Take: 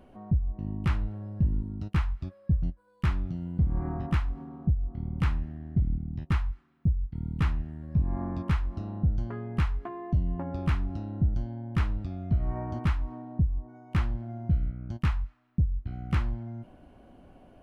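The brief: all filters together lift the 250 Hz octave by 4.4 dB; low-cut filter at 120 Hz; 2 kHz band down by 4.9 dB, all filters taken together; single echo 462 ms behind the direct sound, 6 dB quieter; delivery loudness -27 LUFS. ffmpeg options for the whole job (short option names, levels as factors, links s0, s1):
-af "highpass=120,equalizer=f=250:t=o:g=7.5,equalizer=f=2000:t=o:g=-6.5,aecho=1:1:462:0.501,volume=1.68"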